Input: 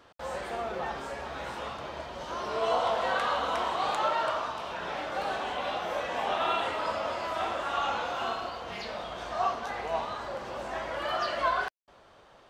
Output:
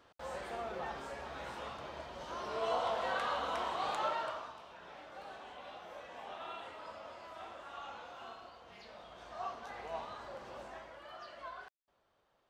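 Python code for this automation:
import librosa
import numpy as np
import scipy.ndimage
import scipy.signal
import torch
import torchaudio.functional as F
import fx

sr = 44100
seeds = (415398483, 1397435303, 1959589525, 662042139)

y = fx.gain(x, sr, db=fx.line((4.09, -7.0), (4.68, -17.0), (8.72, -17.0), (9.86, -10.5), (10.6, -10.5), (11.02, -19.5)))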